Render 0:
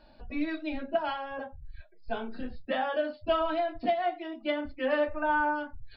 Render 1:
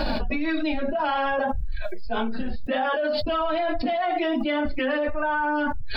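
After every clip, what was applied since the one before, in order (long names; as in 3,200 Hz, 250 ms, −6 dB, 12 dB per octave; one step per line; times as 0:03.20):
flanger 1.8 Hz, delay 3.5 ms, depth 1.9 ms, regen +38%
envelope flattener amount 100%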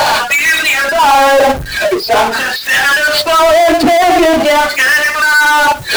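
auto-filter high-pass sine 0.44 Hz 320–1,900 Hz
power curve on the samples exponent 0.35
level +6.5 dB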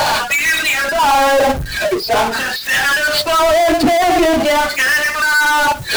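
bass and treble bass +5 dB, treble +2 dB
level −4.5 dB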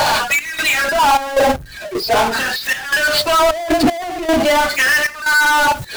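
gate pattern "xx.xxx.x..xx" 77 BPM −12 dB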